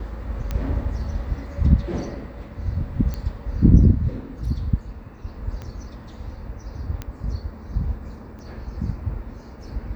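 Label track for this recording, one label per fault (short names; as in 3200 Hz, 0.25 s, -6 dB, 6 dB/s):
0.510000	0.510000	pop -14 dBFS
3.140000	3.140000	pop -16 dBFS
5.620000	5.620000	pop -22 dBFS
7.020000	7.020000	pop -16 dBFS
8.390000	8.390000	pop -31 dBFS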